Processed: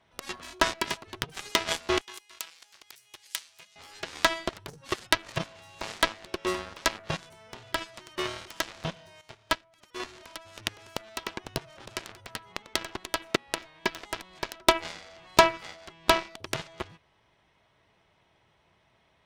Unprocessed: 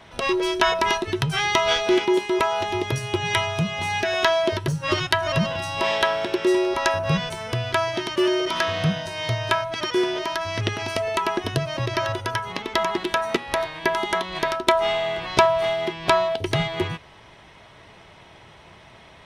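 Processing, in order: added harmonics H 5 -18 dB, 7 -12 dB, 8 -43 dB, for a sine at -1 dBFS; 2.01–3.76 pre-emphasis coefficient 0.97; 9.21–10 upward expander 1.5:1, over -45 dBFS; gain -1 dB

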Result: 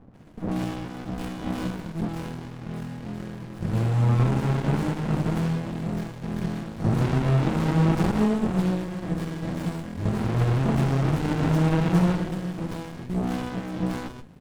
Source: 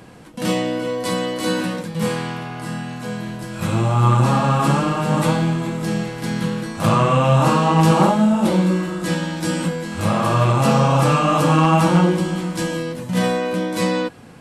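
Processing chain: bands offset in time lows, highs 0.14 s, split 860 Hz; running maximum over 65 samples; gain -4.5 dB

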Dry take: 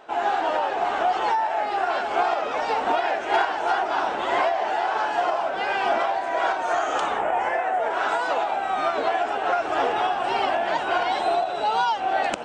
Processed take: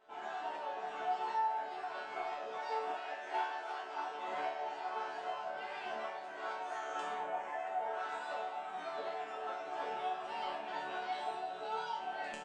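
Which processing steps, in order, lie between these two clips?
resonator bank D3 major, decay 0.56 s; 2.58–4.28 HPF 310 Hz 12 dB/oct; tapped delay 0.606/0.679 s -19/-17 dB; gain +1.5 dB

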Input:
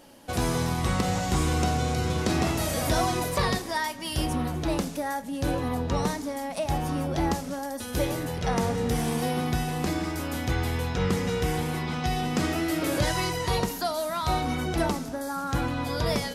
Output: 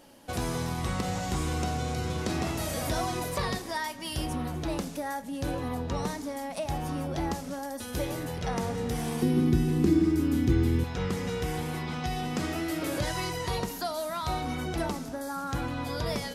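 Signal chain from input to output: 9.22–10.84 resonant low shelf 460 Hz +9.5 dB, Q 3; in parallel at +0.5 dB: compressor, threshold -27 dBFS, peak gain reduction 15 dB; on the sum: gain -9 dB

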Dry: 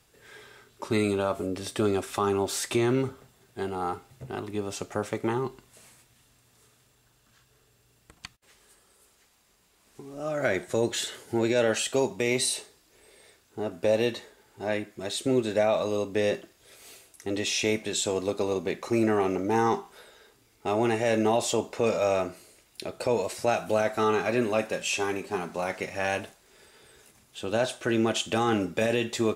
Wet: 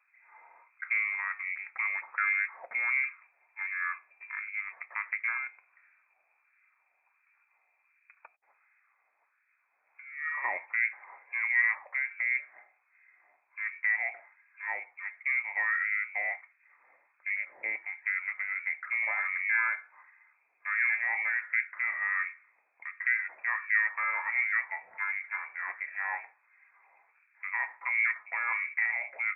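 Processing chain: inverted band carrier 2500 Hz; LFO high-pass sine 1.4 Hz 690–1700 Hz; gain -8.5 dB

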